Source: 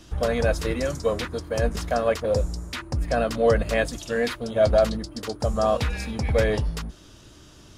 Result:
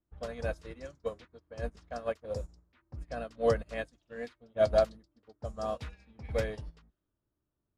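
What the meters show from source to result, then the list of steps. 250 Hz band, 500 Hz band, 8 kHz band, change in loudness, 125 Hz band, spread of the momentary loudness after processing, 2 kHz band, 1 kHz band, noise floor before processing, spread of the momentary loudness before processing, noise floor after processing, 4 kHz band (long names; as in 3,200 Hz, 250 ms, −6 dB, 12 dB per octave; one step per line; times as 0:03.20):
−15.0 dB, −10.0 dB, below −15 dB, −10.0 dB, −14.0 dB, 19 LU, −13.5 dB, −11.0 dB, −49 dBFS, 10 LU, −85 dBFS, −15.5 dB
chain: hum removal 313.2 Hz, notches 7
low-pass that shuts in the quiet parts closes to 1,100 Hz, open at −18 dBFS
expander for the loud parts 2.5 to 1, over −35 dBFS
level −4.5 dB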